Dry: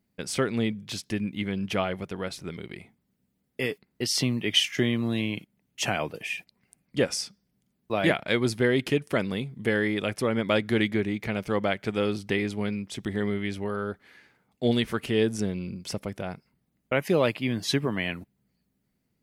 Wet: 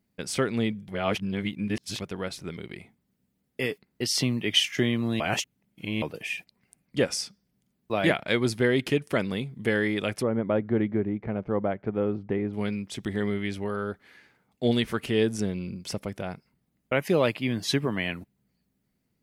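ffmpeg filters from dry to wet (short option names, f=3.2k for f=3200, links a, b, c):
-filter_complex "[0:a]asplit=3[a][b][c];[a]afade=t=out:st=10.22:d=0.02[d];[b]lowpass=1k,afade=t=in:st=10.22:d=0.02,afade=t=out:st=12.53:d=0.02[e];[c]afade=t=in:st=12.53:d=0.02[f];[d][e][f]amix=inputs=3:normalize=0,asplit=5[g][h][i][j][k];[g]atrim=end=0.882[l];[h]atrim=start=0.878:end=2.002,asetpts=PTS-STARTPTS,areverse[m];[i]atrim=start=1.998:end=5.202[n];[j]atrim=start=5.198:end=6.022,asetpts=PTS-STARTPTS,areverse[o];[k]atrim=start=6.018[p];[l][m]acrossfade=d=0.004:c1=hsin:c2=hsin[q];[q][n]acrossfade=d=0.004:c1=hsin:c2=hsin[r];[r][o]acrossfade=d=0.004:c1=hsin:c2=hsin[s];[s][p]acrossfade=d=0.004:c1=hsin:c2=hsin"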